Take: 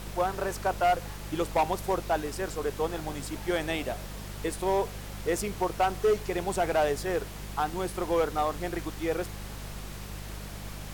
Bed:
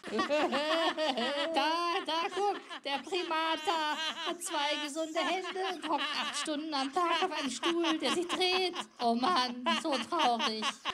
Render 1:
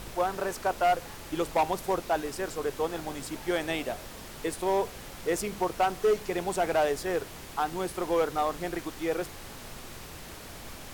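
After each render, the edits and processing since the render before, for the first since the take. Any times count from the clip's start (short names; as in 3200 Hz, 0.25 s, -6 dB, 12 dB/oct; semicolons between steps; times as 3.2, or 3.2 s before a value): de-hum 50 Hz, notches 4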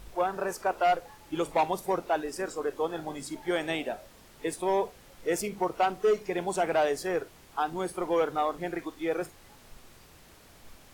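noise print and reduce 11 dB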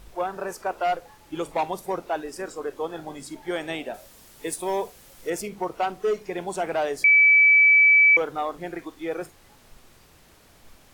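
3.94–5.3 high shelf 5300 Hz +11 dB; 7.04–8.17 bleep 2300 Hz -12 dBFS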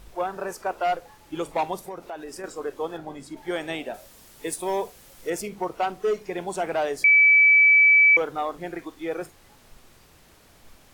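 1.83–2.44 compressor 4:1, threshold -33 dBFS; 2.97–3.37 high shelf 3500 Hz -8.5 dB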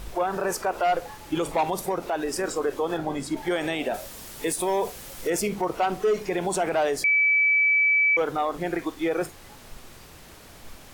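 in parallel at +2 dB: vocal rider within 4 dB; on the sum: limiter -17 dBFS, peak gain reduction 11 dB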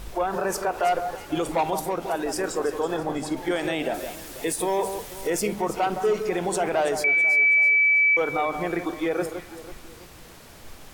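echo with dull and thin repeats by turns 0.164 s, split 1500 Hz, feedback 62%, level -8 dB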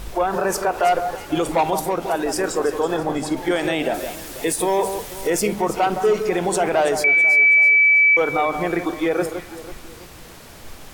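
gain +5 dB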